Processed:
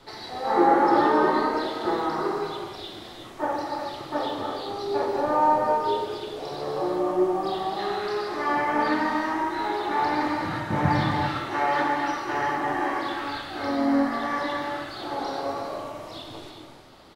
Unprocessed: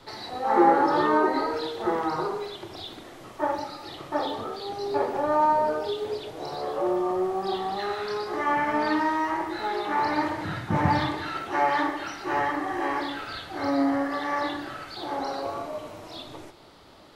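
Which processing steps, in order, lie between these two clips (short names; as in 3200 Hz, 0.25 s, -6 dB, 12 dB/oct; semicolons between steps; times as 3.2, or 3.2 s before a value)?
harmoniser -3 st -13 dB; non-linear reverb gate 0.42 s flat, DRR 1 dB; gain -1.5 dB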